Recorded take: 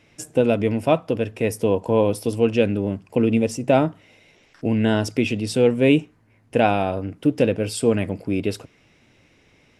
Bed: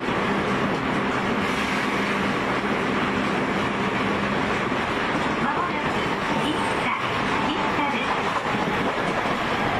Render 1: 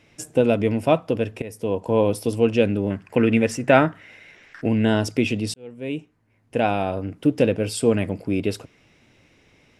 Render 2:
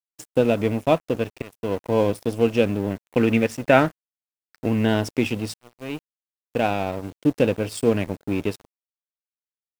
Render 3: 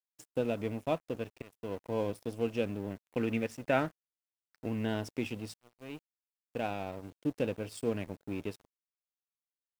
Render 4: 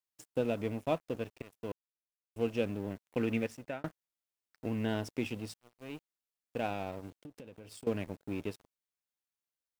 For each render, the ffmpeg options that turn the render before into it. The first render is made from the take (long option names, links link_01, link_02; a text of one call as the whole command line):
ffmpeg -i in.wav -filter_complex "[0:a]asettb=1/sr,asplit=3[link_01][link_02][link_03];[link_01]atrim=end=2.904[link_04];[link_02]atrim=start=2.9:end=4.69,asetpts=PTS-STARTPTS,afade=type=in:duration=0.004:curve=qsin,afade=type=out:start_time=1.786:duration=0.004:curve=qsin,equalizer=frequency=1700:width=1.5:gain=14[link_05];[link_03]atrim=start=4.686[link_06];[link_04][link_05]acrossfade=duration=0.004:curve1=hsin:curve2=qsin[link_07];[link_07][link_06]acrossfade=duration=0.004:curve1=qsin:curve2=hsin,asplit=3[link_08][link_09][link_10];[link_08]atrim=end=1.42,asetpts=PTS-STARTPTS,afade=type=out:start_time=1.416:duration=0.004:curve=hsin:silence=0.141254[link_11];[link_09]atrim=start=1.42:end=5.54,asetpts=PTS-STARTPTS,afade=type=in:duration=0.79:curve=qsin:silence=0.141254,afade=type=out:start_time=4.116:duration=0.004:curve=hsin[link_12];[link_10]atrim=start=5.54,asetpts=PTS-STARTPTS,afade=type=in:duration=1.59[link_13];[link_11][link_12][link_13]concat=n=3:v=0:a=1" out.wav
ffmpeg -i in.wav -af "acrusher=bits=7:mix=0:aa=0.000001,aeval=exprs='sgn(val(0))*max(abs(val(0))-0.02,0)':channel_layout=same" out.wav
ffmpeg -i in.wav -af "volume=-13dB" out.wav
ffmpeg -i in.wav -filter_complex "[0:a]asettb=1/sr,asplit=3[link_01][link_02][link_03];[link_01]atrim=end=7.134[link_04];[link_02]atrim=start=7.13:end=7.87,asetpts=PTS-STARTPTS,afade=type=in:duration=0.004:curve=qsin,afade=type=out:start_time=0.736:duration=0.004:curve=qsin,acompressor=threshold=-45dB:ratio=12:attack=3.2:release=140:knee=1:detection=peak[link_05];[link_03]atrim=start=7.866[link_06];[link_04][link_05]acrossfade=duration=0.004:curve1=hsin:curve2=qsin[link_07];[link_07][link_06]acrossfade=duration=0.004:curve1=qsin:curve2=hsin,asplit=4[link_08][link_09][link_10][link_11];[link_08]atrim=end=1.72,asetpts=PTS-STARTPTS,afade=type=out:start_time=1.716:duration=0.004:curve=hsin[link_12];[link_09]atrim=start=1.72:end=2.36,asetpts=PTS-STARTPTS,volume=0[link_13];[link_10]atrim=start=2.36:end=3.84,asetpts=PTS-STARTPTS,afade=type=in:duration=0.004:curve=hsin,afade=type=out:start_time=1.06:duration=0.42[link_14];[link_11]atrim=start=3.84,asetpts=PTS-STARTPTS,afade=type=in:duration=0.004:curve=hsin[link_15];[link_12][link_13][link_14][link_15]concat=n=4:v=0:a=1" out.wav